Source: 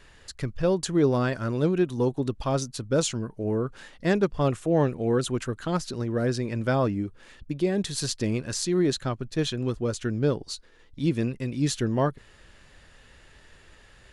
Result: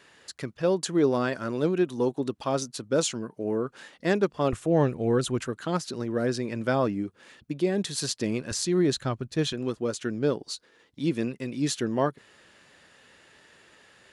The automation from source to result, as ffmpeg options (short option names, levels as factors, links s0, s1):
-af "asetnsamples=n=441:p=0,asendcmd='4.53 highpass f 53;5.47 highpass f 160;8.51 highpass f 59;9.53 highpass f 190',highpass=200"